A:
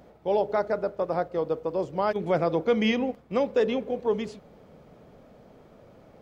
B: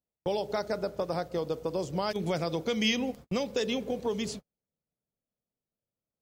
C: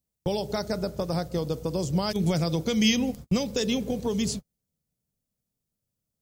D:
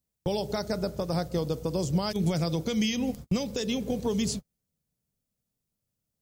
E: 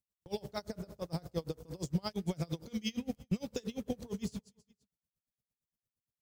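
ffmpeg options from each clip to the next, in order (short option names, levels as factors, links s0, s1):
-filter_complex "[0:a]agate=range=0.00447:threshold=0.00794:ratio=16:detection=peak,bass=f=250:g=6,treble=f=4000:g=12,acrossover=split=2400[s0][s1];[s0]acompressor=threshold=0.0316:ratio=6[s2];[s2][s1]amix=inputs=2:normalize=0,volume=1.26"
-af "bass=f=250:g=12,treble=f=4000:g=10"
-af "alimiter=limit=0.133:level=0:latency=1:release=224"
-filter_complex "[0:a]asplit=2[s0][s1];[s1]acrusher=bits=5:mix=0:aa=0.5,volume=0.447[s2];[s0][s2]amix=inputs=2:normalize=0,aecho=1:1:162|324|486:0.0631|0.0334|0.0177,aeval=exprs='val(0)*pow(10,-28*(0.5-0.5*cos(2*PI*8.7*n/s))/20)':c=same,volume=0.447"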